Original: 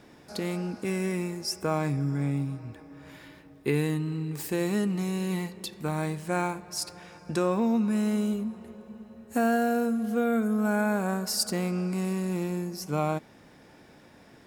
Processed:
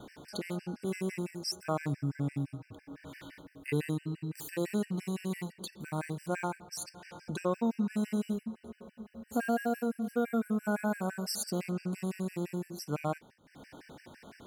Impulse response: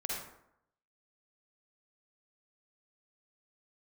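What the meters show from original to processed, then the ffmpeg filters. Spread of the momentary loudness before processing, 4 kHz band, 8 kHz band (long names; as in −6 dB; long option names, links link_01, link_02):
12 LU, −6.5 dB, −6.0 dB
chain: -af "acompressor=mode=upward:threshold=-34dB:ratio=2.5,agate=range=-33dB:threshold=-42dB:ratio=3:detection=peak,afftfilt=real='re*gt(sin(2*PI*5.9*pts/sr)*(1-2*mod(floor(b*sr/1024/1500),2)),0)':imag='im*gt(sin(2*PI*5.9*pts/sr)*(1-2*mod(floor(b*sr/1024/1500),2)),0)':win_size=1024:overlap=0.75,volume=-3dB"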